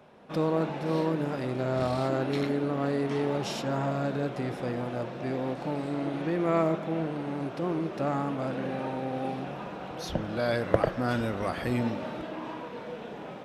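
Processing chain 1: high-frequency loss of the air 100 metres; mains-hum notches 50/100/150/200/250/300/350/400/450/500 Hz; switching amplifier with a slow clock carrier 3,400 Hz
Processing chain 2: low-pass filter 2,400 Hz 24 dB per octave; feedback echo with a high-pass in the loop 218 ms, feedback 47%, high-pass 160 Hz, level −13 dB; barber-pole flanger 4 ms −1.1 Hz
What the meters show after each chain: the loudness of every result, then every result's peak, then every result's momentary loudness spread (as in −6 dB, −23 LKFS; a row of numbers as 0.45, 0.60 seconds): −27.5, −33.5 LKFS; −8.5, −11.5 dBFS; 3, 10 LU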